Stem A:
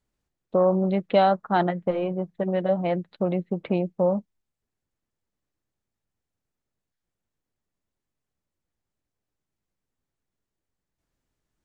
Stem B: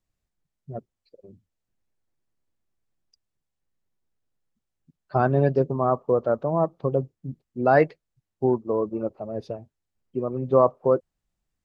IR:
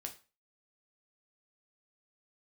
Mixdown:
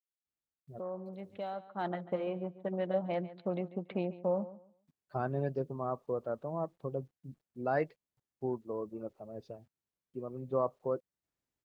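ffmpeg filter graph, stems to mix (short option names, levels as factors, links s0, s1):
-filter_complex "[0:a]highpass=45,deesser=0.95,lowshelf=f=190:g=-5,adelay=250,volume=0.376,afade=t=in:st=1.64:d=0.44:silence=0.281838,asplit=2[s0][s1];[s1]volume=0.158[s2];[1:a]acrusher=bits=10:mix=0:aa=0.000001,volume=0.211[s3];[s2]aecho=0:1:142|284|426:1|0.21|0.0441[s4];[s0][s3][s4]amix=inputs=3:normalize=0"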